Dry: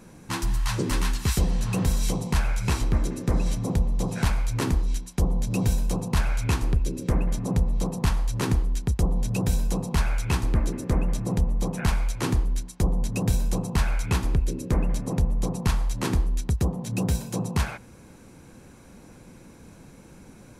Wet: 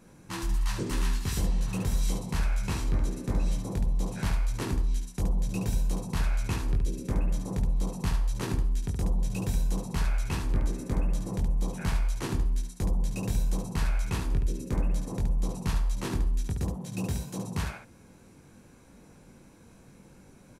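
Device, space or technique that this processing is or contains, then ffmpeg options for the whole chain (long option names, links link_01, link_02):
slapback doubling: -filter_complex "[0:a]asplit=3[link_01][link_02][link_03];[link_02]adelay=21,volume=-4dB[link_04];[link_03]adelay=72,volume=-5.5dB[link_05];[link_01][link_04][link_05]amix=inputs=3:normalize=0,volume=-8dB"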